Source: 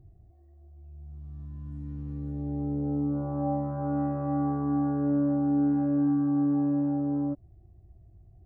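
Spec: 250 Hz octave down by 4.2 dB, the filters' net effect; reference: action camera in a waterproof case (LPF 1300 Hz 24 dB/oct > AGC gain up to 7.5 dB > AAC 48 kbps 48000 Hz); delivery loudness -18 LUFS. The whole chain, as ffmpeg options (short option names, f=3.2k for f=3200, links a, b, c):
-af "lowpass=f=1.3k:w=0.5412,lowpass=f=1.3k:w=1.3066,equalizer=f=250:t=o:g=-5,dynaudnorm=m=7.5dB,volume=14dB" -ar 48000 -c:a aac -b:a 48k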